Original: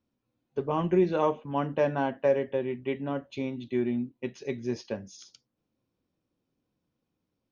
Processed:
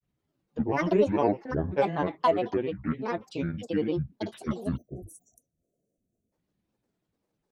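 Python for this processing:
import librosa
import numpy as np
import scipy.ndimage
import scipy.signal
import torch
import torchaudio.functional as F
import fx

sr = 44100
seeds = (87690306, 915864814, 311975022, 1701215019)

y = fx.granulator(x, sr, seeds[0], grain_ms=100.0, per_s=20.0, spray_ms=21.0, spread_st=12)
y = fx.spec_erase(y, sr, start_s=4.77, length_s=1.55, low_hz=740.0, high_hz=5700.0)
y = F.gain(torch.from_numpy(y), 2.0).numpy()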